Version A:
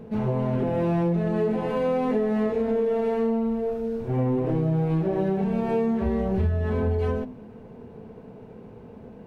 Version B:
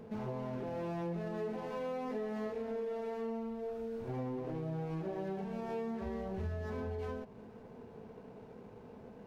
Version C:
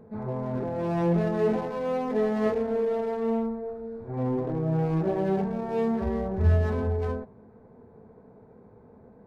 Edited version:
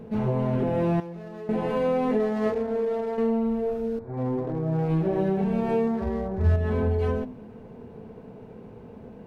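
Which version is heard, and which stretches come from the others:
A
1.00–1.49 s: from B
2.20–3.18 s: from C
3.99–4.88 s: from C
5.87–6.56 s: from C

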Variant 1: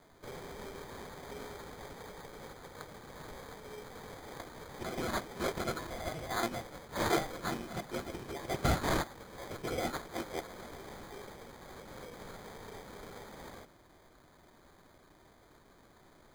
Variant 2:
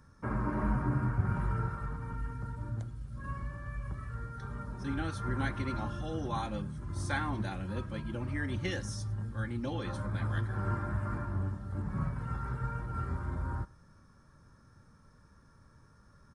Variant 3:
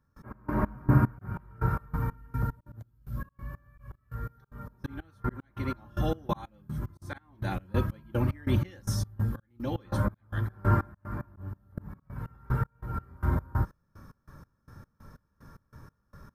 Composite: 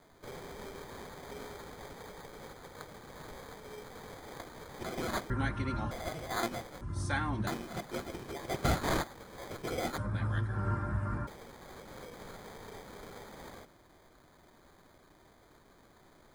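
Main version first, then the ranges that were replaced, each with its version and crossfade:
1
5.30–5.91 s: from 2
6.81–7.47 s: from 2
9.98–11.27 s: from 2
not used: 3

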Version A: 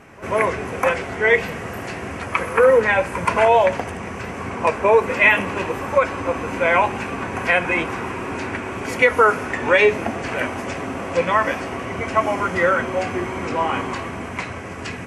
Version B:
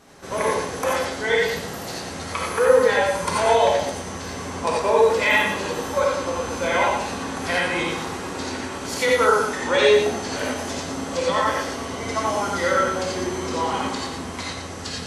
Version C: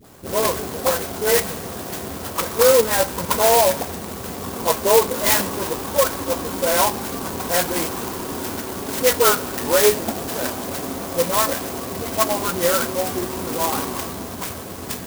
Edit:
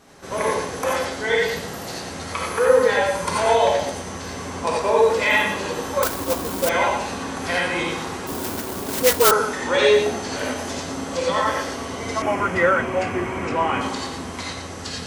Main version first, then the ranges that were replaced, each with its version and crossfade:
B
6.03–6.69 s: from C
8.27–9.31 s: from C
12.22–13.81 s: from A

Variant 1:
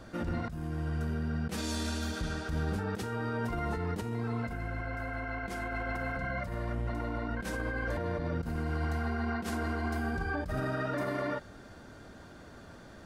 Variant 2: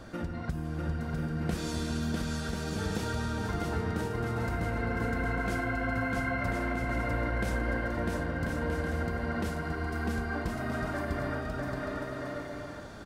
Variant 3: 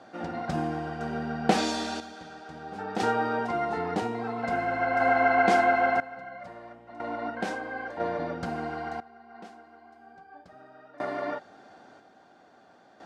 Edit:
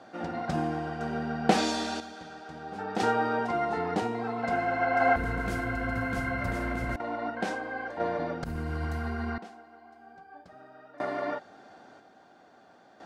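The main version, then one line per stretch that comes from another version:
3
5.16–6.96 s: from 2
8.44–9.38 s: from 1

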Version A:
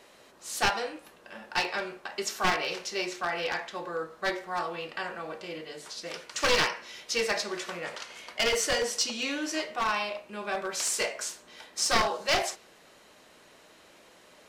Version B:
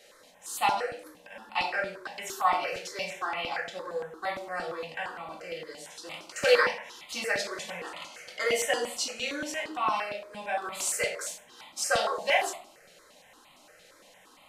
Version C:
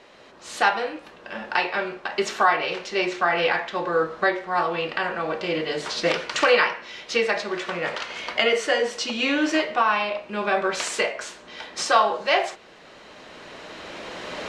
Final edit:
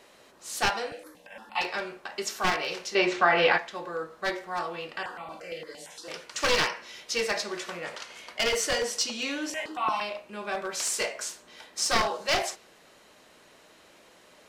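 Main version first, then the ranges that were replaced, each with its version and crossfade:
A
0.91–1.61 s: from B
2.95–3.58 s: from C
5.03–6.08 s: from B
9.50–10.01 s: from B

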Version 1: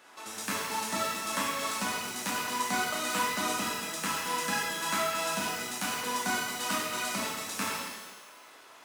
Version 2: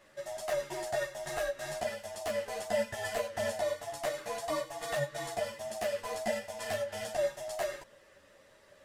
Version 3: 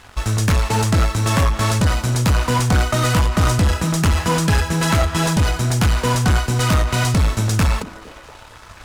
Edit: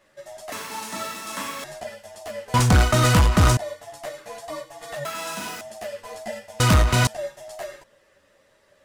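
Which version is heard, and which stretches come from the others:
2
0.52–1.64 s: from 1
2.54–3.57 s: from 3
5.05–5.61 s: from 1
6.60–7.07 s: from 3

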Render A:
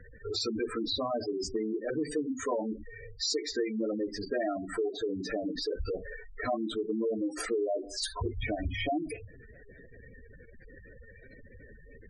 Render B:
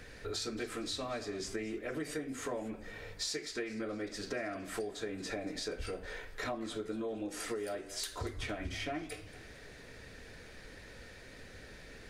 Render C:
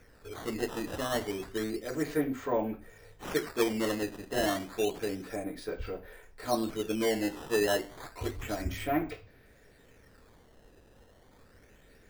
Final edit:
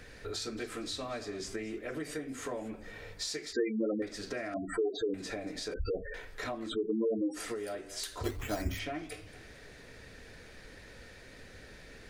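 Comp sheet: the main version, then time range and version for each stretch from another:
B
3.53–4.02 s: from A
4.54–5.14 s: from A
5.74–6.14 s: from A
6.69–7.36 s: from A, crossfade 0.06 s
8.24–8.79 s: from C

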